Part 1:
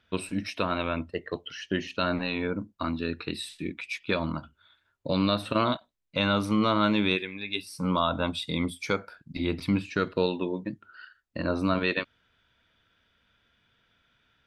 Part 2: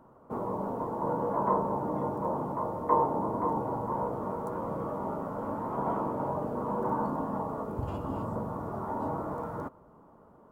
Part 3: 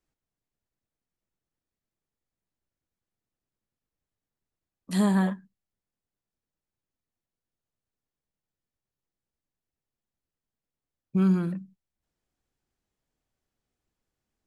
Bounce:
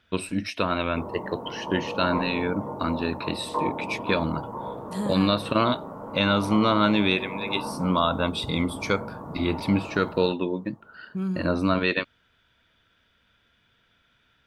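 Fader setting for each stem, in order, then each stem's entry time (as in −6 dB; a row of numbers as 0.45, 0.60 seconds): +3.0, −2.5, −6.5 decibels; 0.00, 0.65, 0.00 seconds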